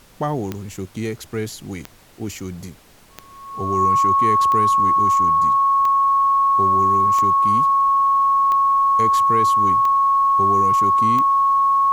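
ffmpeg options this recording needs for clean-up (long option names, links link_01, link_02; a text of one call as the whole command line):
ffmpeg -i in.wav -af "adeclick=threshold=4,bandreject=frequency=1100:width=30,agate=range=-21dB:threshold=-37dB" out.wav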